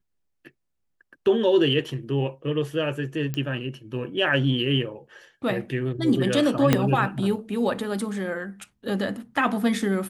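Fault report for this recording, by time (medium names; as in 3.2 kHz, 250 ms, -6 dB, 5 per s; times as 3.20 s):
3.34 s: pop -15 dBFS
6.73 s: pop -4 dBFS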